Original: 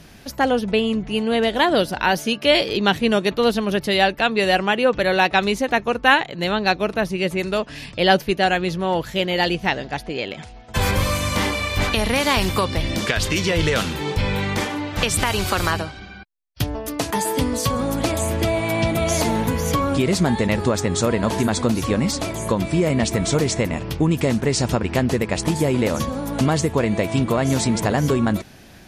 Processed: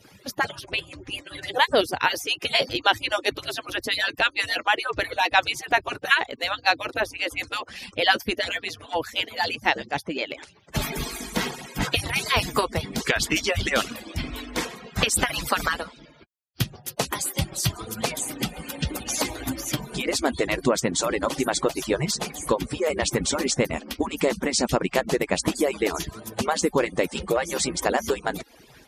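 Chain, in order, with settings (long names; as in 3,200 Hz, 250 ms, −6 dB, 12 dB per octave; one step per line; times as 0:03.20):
harmonic-percussive split with one part muted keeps percussive
high-pass filter 52 Hz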